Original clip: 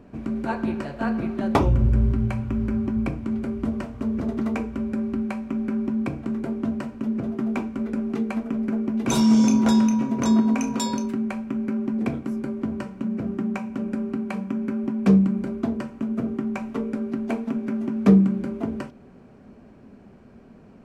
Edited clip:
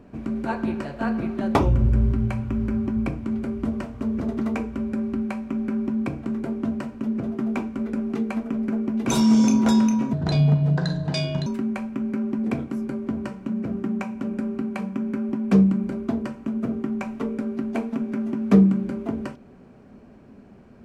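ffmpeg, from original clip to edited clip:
-filter_complex "[0:a]asplit=3[a][b][c];[a]atrim=end=10.134[d];[b]atrim=start=10.13:end=11.01,asetpts=PTS-STARTPTS,asetrate=29106,aresample=44100[e];[c]atrim=start=11.006[f];[d][e]acrossfade=d=0.004:c1=hsin:c2=hsin[g];[g][f]acrossfade=d=0.004:c1=hsin:c2=hsin"

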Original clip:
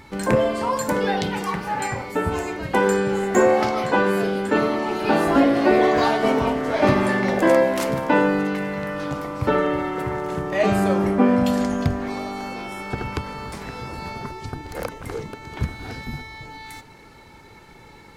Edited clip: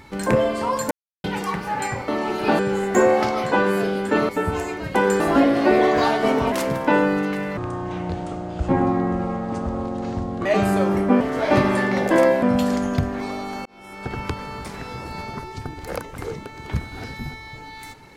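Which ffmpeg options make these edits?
-filter_complex "[0:a]asplit=13[a][b][c][d][e][f][g][h][i][j][k][l][m];[a]atrim=end=0.91,asetpts=PTS-STARTPTS,afade=t=out:st=0.906:d=0.004:c=hsin[n];[b]atrim=start=0.91:end=1.24,asetpts=PTS-STARTPTS,volume=0[o];[c]atrim=start=1.24:end=2.082,asetpts=PTS-STARTPTS,afade=t=in:d=0.004:c=hsin[p];[d]atrim=start=4.688:end=5.202[q];[e]atrim=start=2.988:end=4.692[r];[f]atrim=start=2.078:end=2.992[s];[g]atrim=start=5.198:end=6.522[t];[h]atrim=start=7.738:end=8.794[u];[i]atrim=start=8.79:end=10.55,asetpts=PTS-STARTPTS,asetrate=26901,aresample=44100,atrim=end_sample=127239,asetpts=PTS-STARTPTS[v];[j]atrim=start=10.546:end=11.302[w];[k]atrim=start=6.518:end=7.742[x];[l]atrim=start=11.298:end=12.53,asetpts=PTS-STARTPTS,afade=t=out:st=1.228:d=0.004:c=hsin[y];[m]atrim=start=12.53,asetpts=PTS-STARTPTS,afade=t=in:d=0.54[z];[n][o][p]concat=n=3:v=0:a=1[aa];[aa][q]acrossfade=d=0.004:c1=hsin:c2=hsin[ab];[ab][r]acrossfade=d=0.004:c1=hsin:c2=hsin[ac];[ac][s]acrossfade=d=0.004:c1=hsin:c2=hsin[ad];[ad][t]acrossfade=d=0.004:c1=hsin:c2=hsin[ae];[ae][u]acrossfade=d=0.004:c1=hsin:c2=hsin[af];[af][v]acrossfade=d=0.004:c1=hsin:c2=hsin[ag];[ag][w]acrossfade=d=0.004:c1=hsin:c2=hsin[ah];[ah][x]acrossfade=d=0.004:c1=hsin:c2=hsin[ai];[y][z]concat=n=2:v=0:a=1[aj];[ai][aj]acrossfade=d=0.004:c1=hsin:c2=hsin"

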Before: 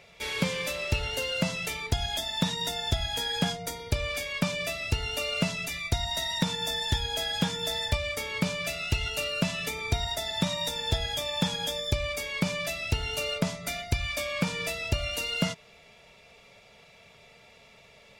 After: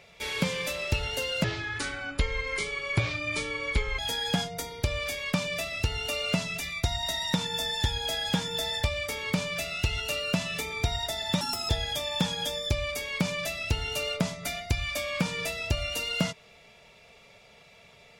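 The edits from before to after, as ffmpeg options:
-filter_complex "[0:a]asplit=5[a][b][c][d][e];[a]atrim=end=1.444[f];[b]atrim=start=1.44:end=3.07,asetpts=PTS-STARTPTS,asetrate=28224,aresample=44100,atrim=end_sample=112317,asetpts=PTS-STARTPTS[g];[c]atrim=start=3.066:end=10.494[h];[d]atrim=start=10.49:end=10.91,asetpts=PTS-STARTPTS,asetrate=64386,aresample=44100,atrim=end_sample=12686,asetpts=PTS-STARTPTS[i];[e]atrim=start=10.906[j];[f][g]acrossfade=d=0.004:c1=hsin:c2=hsin[k];[k][h]acrossfade=d=0.004:c1=hsin:c2=hsin[l];[l][i]acrossfade=d=0.004:c1=hsin:c2=hsin[m];[m][j]acrossfade=d=0.004:c1=hsin:c2=hsin"

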